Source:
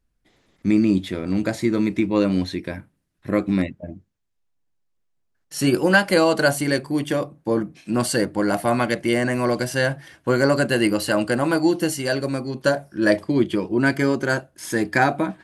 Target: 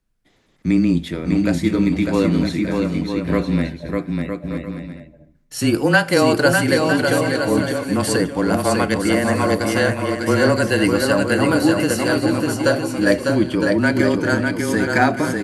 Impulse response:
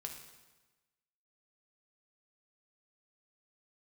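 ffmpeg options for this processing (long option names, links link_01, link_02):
-filter_complex "[0:a]aecho=1:1:600|960|1176|1306|1383:0.631|0.398|0.251|0.158|0.1,afreqshift=-21,asplit=2[link_01][link_02];[1:a]atrim=start_sample=2205[link_03];[link_02][link_03]afir=irnorm=-1:irlink=0,volume=-10dB[link_04];[link_01][link_04]amix=inputs=2:normalize=0"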